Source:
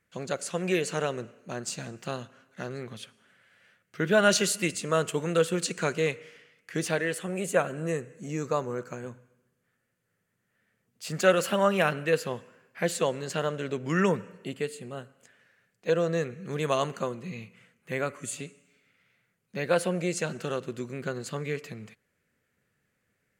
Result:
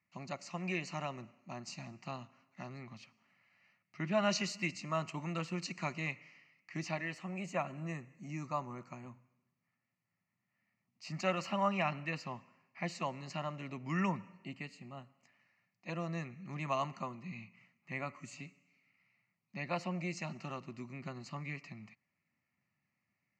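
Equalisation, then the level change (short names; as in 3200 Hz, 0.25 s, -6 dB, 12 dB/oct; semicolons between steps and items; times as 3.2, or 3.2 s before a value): BPF 130–4500 Hz; fixed phaser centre 2300 Hz, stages 8; -4.0 dB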